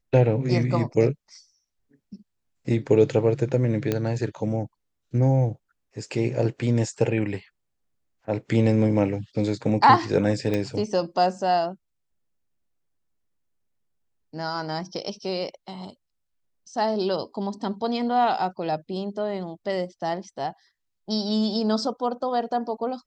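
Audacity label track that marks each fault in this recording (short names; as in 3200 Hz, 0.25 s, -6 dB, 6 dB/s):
3.920000	3.920000	pop -11 dBFS
10.540000	10.540000	pop -14 dBFS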